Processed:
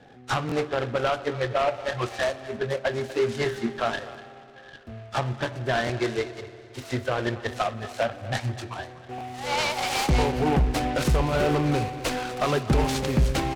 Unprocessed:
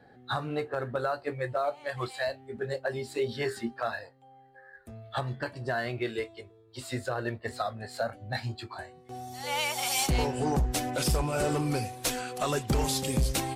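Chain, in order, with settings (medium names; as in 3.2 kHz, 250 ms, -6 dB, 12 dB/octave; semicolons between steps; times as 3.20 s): low-pass 3.9 kHz 12 dB/octave; on a send: delay 244 ms -17 dB; on the sum: spring tank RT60 3 s, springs 57 ms, chirp 35 ms, DRR 14.5 dB; buffer glitch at 0.47/4.10/5.85/9.16 s, samples 1024, times 1; delay time shaken by noise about 1.5 kHz, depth 0.055 ms; trim +5.5 dB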